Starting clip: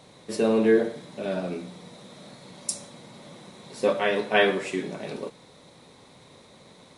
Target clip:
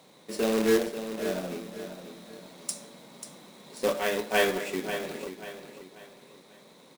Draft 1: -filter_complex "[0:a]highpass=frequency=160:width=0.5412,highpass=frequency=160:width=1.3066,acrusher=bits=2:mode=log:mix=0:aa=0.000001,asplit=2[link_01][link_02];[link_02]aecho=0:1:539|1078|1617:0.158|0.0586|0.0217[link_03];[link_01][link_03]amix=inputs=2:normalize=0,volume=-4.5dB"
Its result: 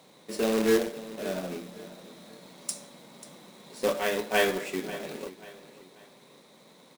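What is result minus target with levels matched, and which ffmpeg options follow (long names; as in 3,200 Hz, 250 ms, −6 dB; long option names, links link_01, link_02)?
echo-to-direct −6 dB
-filter_complex "[0:a]highpass=frequency=160:width=0.5412,highpass=frequency=160:width=1.3066,acrusher=bits=2:mode=log:mix=0:aa=0.000001,asplit=2[link_01][link_02];[link_02]aecho=0:1:539|1078|1617|2156:0.316|0.117|0.0433|0.016[link_03];[link_01][link_03]amix=inputs=2:normalize=0,volume=-4.5dB"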